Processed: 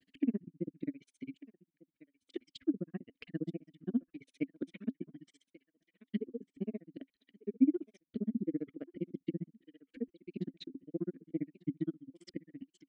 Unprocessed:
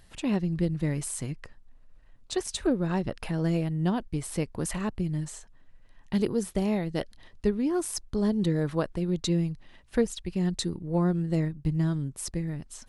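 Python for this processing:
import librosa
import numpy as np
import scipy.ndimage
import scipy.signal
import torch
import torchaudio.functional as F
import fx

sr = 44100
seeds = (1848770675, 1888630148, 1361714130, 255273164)

p1 = fx.spec_ripple(x, sr, per_octave=1.5, drift_hz=-0.31, depth_db=8)
p2 = scipy.signal.sosfilt(scipy.signal.butter(2, 45.0, 'highpass', fs=sr, output='sos'), p1)
p3 = fx.peak_eq(p2, sr, hz=530.0, db=8.0, octaves=1.7)
p4 = fx.env_lowpass_down(p3, sr, base_hz=1300.0, full_db=-19.0)
p5 = fx.high_shelf(p4, sr, hz=4100.0, db=4.5)
p6 = fx.level_steps(p5, sr, step_db=12)
p7 = fx.dereverb_blind(p6, sr, rt60_s=1.6)
p8 = p7 + fx.echo_thinned(p7, sr, ms=1174, feedback_pct=24, hz=620.0, wet_db=-16.0, dry=0)
p9 = fx.granulator(p8, sr, seeds[0], grain_ms=45.0, per_s=15.0, spray_ms=14.0, spread_st=0)
p10 = fx.vowel_filter(p9, sr, vowel='i')
y = p10 * 10.0 ** (9.0 / 20.0)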